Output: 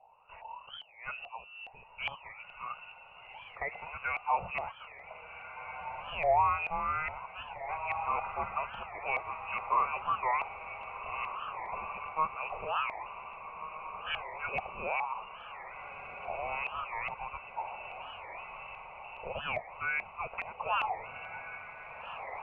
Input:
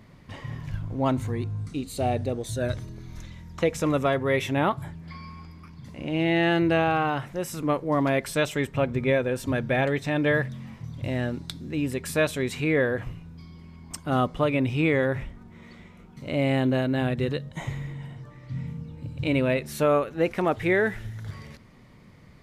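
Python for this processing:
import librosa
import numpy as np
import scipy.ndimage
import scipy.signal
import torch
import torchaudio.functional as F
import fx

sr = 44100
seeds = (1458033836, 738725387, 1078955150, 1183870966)

y = fx.freq_invert(x, sr, carrier_hz=2800)
y = fx.fixed_phaser(y, sr, hz=720.0, stages=4)
y = fx.filter_lfo_lowpass(y, sr, shape='saw_up', hz=2.4, low_hz=720.0, high_hz=1900.0, q=6.3)
y = fx.echo_diffused(y, sr, ms=1600, feedback_pct=57, wet_db=-8.5)
y = fx.record_warp(y, sr, rpm=45.0, depth_cents=250.0)
y = y * 10.0 ** (-5.5 / 20.0)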